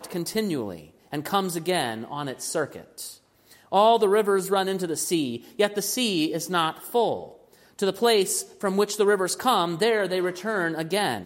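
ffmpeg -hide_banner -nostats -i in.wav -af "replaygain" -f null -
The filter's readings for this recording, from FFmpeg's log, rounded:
track_gain = +4.2 dB
track_peak = 0.303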